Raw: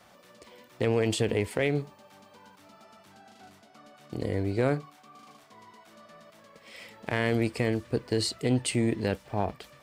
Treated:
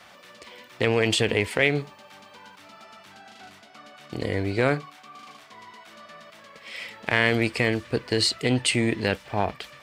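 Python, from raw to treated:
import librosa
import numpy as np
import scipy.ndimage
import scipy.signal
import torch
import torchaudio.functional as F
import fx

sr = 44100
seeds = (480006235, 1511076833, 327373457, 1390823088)

y = fx.peak_eq(x, sr, hz=2500.0, db=9.5, octaves=2.7)
y = y * librosa.db_to_amplitude(1.5)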